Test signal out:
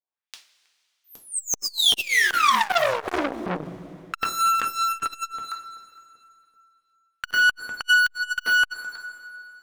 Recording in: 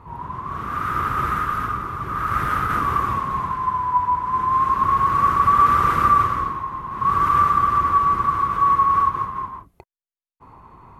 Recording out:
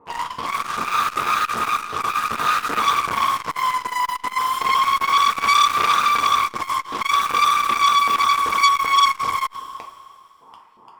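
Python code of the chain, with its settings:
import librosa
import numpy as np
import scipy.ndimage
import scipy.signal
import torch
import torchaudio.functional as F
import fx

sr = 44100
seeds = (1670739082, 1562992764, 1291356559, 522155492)

p1 = fx.low_shelf(x, sr, hz=96.0, db=-8.0)
p2 = p1 + fx.echo_single(p1, sr, ms=320, db=-17.0, dry=0)
p3 = fx.filter_lfo_bandpass(p2, sr, shape='saw_up', hz=2.6, low_hz=410.0, high_hz=4800.0, q=1.3)
p4 = scipy.signal.sosfilt(scipy.signal.butter(4, 10000.0, 'lowpass', fs=sr, output='sos'), p3)
p5 = fx.fuzz(p4, sr, gain_db=39.0, gate_db=-40.0)
p6 = p4 + (p5 * librosa.db_to_amplitude(-8.0))
p7 = fx.rev_double_slope(p6, sr, seeds[0], early_s=0.31, late_s=2.5, knee_db=-18, drr_db=1.5)
p8 = fx.dynamic_eq(p7, sr, hz=2500.0, q=1.0, threshold_db=-26.0, ratio=4.0, max_db=-4)
y = fx.transformer_sat(p8, sr, knee_hz=2900.0)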